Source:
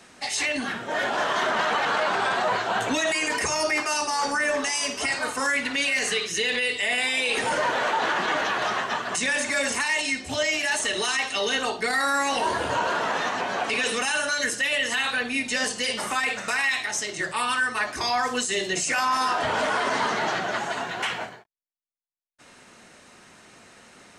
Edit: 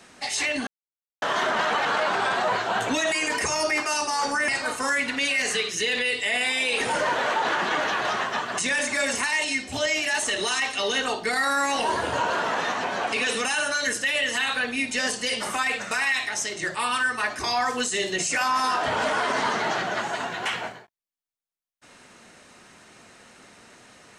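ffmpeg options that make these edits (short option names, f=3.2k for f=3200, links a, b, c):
-filter_complex "[0:a]asplit=4[a][b][c][d];[a]atrim=end=0.67,asetpts=PTS-STARTPTS,afade=t=out:st=0.666:d=0.004:c=hsin[e];[b]atrim=start=0.67:end=1.22,asetpts=PTS-STARTPTS,volume=0[f];[c]atrim=start=1.22:end=4.482,asetpts=PTS-STARTPTS,afade=t=in:d=0.004:c=hsin[g];[d]atrim=start=5.048[h];[e][f][g]concat=n=3:v=0:a=1[i];[i][h]acrossfade=d=0.004:c1=hsin:c2=hsin"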